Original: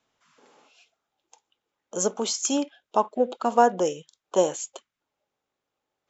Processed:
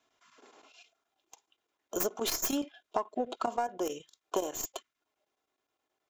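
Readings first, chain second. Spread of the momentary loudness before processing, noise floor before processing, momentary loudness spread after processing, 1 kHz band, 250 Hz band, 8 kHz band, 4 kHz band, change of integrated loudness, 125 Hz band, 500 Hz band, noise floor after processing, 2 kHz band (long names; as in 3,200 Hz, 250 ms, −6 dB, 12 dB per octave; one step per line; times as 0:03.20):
15 LU, −85 dBFS, 9 LU, −10.5 dB, −8.0 dB, can't be measured, −5.0 dB, −9.0 dB, −11.5 dB, −10.5 dB, below −85 dBFS, −7.0 dB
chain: stylus tracing distortion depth 0.12 ms
low-shelf EQ 130 Hz −9.5 dB
comb filter 2.9 ms, depth 48%
downward compressor 16 to 1, threshold −27 dBFS, peak gain reduction 17 dB
square-wave tremolo 9.5 Hz, depth 65%, duty 85%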